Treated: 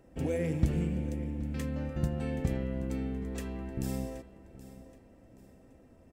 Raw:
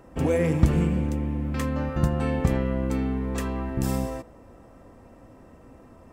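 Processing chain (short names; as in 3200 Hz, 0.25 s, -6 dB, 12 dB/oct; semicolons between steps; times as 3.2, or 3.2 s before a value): bell 1100 Hz -11 dB 0.72 oct; on a send: feedback echo 0.775 s, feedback 35%, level -16.5 dB; on the sum: gain -8 dB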